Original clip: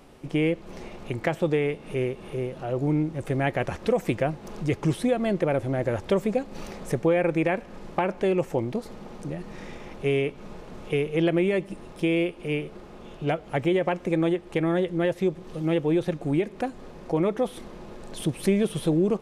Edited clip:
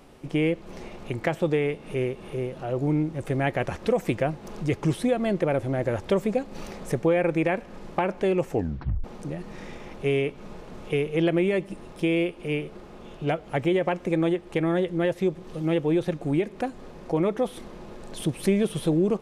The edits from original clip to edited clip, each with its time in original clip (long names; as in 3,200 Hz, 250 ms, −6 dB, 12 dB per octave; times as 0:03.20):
0:08.51: tape stop 0.53 s